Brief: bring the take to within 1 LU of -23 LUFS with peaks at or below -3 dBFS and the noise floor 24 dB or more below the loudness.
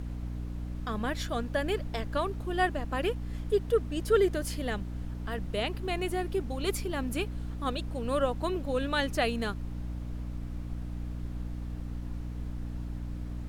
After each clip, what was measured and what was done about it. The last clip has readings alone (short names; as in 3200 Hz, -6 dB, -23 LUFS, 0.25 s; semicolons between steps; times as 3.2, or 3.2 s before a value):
hum 60 Hz; harmonics up to 300 Hz; hum level -34 dBFS; noise floor -38 dBFS; noise floor target -57 dBFS; loudness -32.5 LUFS; peak -12.5 dBFS; loudness target -23.0 LUFS
-> notches 60/120/180/240/300 Hz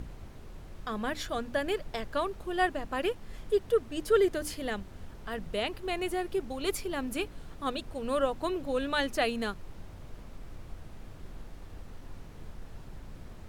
hum none; noise floor -47 dBFS; noise floor target -56 dBFS
-> noise print and reduce 9 dB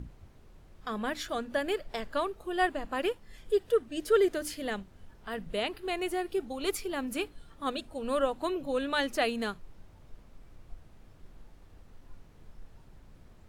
noise floor -56 dBFS; loudness -32.0 LUFS; peak -13.5 dBFS; loudness target -23.0 LUFS
-> gain +9 dB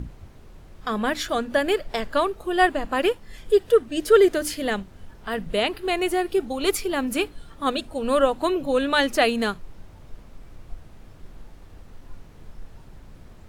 loudness -23.0 LUFS; peak -4.5 dBFS; noise floor -47 dBFS